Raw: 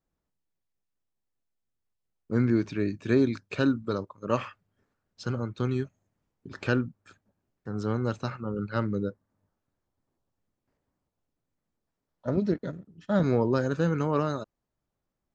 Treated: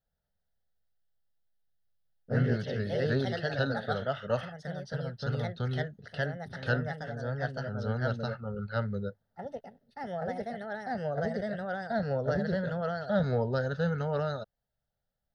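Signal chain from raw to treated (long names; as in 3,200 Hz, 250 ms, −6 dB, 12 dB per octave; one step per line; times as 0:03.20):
delay with pitch and tempo change per echo 236 ms, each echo +2 semitones, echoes 3
phaser with its sweep stopped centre 1,600 Hz, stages 8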